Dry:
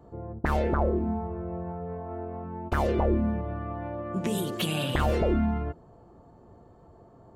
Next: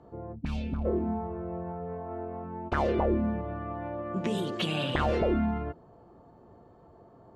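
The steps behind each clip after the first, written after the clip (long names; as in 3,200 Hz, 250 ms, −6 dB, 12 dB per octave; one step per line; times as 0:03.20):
gain on a spectral selection 0:00.35–0:00.85, 280–2,200 Hz −18 dB
low-pass filter 4,900 Hz 12 dB per octave
low-shelf EQ 110 Hz −7.5 dB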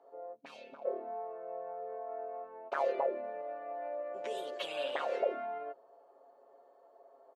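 four-pole ladder high-pass 470 Hz, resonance 50%
comb filter 7.3 ms, depth 64%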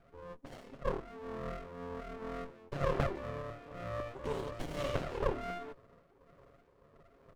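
auto-filter notch saw up 2 Hz 370–1,800 Hz
rotating-speaker cabinet horn 1.2 Hz
windowed peak hold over 33 samples
level +7.5 dB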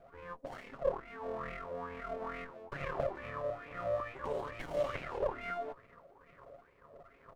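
downward compressor 2 to 1, threshold −44 dBFS, peak gain reduction 10.5 dB
auto-filter bell 2.3 Hz 560–2,400 Hz +17 dB
level −1.5 dB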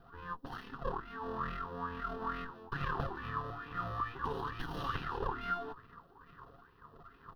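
phaser with its sweep stopped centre 2,200 Hz, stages 6
level +6.5 dB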